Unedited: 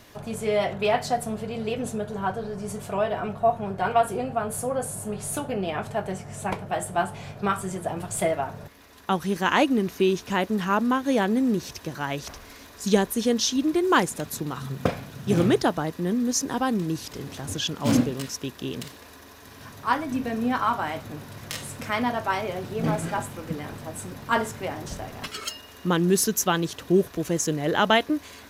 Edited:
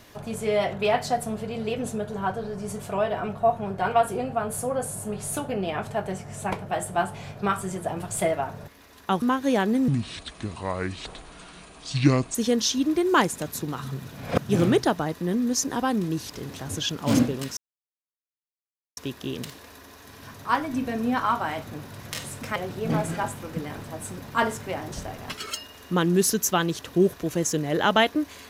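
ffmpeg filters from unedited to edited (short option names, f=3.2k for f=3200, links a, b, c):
-filter_complex "[0:a]asplit=8[a][b][c][d][e][f][g][h];[a]atrim=end=9.222[i];[b]atrim=start=10.838:end=11.504[j];[c]atrim=start=11.5:end=13.13,asetpts=PTS-STARTPTS,asetrate=29106,aresample=44100[k];[d]atrim=start=13.126:end=14.832[l];[e]atrim=start=14.828:end=15.182,asetpts=PTS-STARTPTS,areverse[m];[f]atrim=start=15.178:end=18.35,asetpts=PTS-STARTPTS,afade=t=out:st=3.168:d=0.004:c=hsin,apad=pad_dur=1.4[n];[g]atrim=start=18.35:end=21.942,asetpts=PTS-STARTPTS,afade=t=in:d=0.004:c=hsin[o];[h]atrim=start=22.498[p];[i][j]acrossfade=d=0.004:c1=hsin:c2=hsin[q];[q][k]acrossfade=d=0.004:c1=hsin:c2=hsin[r];[r][l]acrossfade=d=0.004:c1=hsin:c2=hsin[s];[s][m]acrossfade=d=0.004:c1=hsin:c2=hsin[t];[n][o]concat=n=2:v=0:a=1[u];[t][u]acrossfade=d=0.004:c1=hsin:c2=hsin[v];[v][p]acrossfade=d=0.004:c1=hsin:c2=hsin"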